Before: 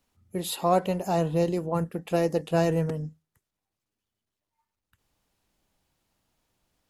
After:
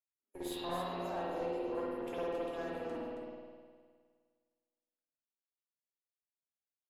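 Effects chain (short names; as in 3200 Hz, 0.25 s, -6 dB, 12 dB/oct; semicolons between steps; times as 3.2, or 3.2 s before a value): octaver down 1 oct, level +1 dB; expander -47 dBFS; steep high-pass 230 Hz 96 dB/oct; compressor, threshold -32 dBFS, peak gain reduction 14 dB; added harmonics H 3 -22 dB, 4 -17 dB, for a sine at -20.5 dBFS; resonator bank C#2 major, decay 0.21 s; echo 0.272 s -7.5 dB; spring tank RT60 1.8 s, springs 51 ms, chirp 20 ms, DRR -9.5 dB; gain -2.5 dB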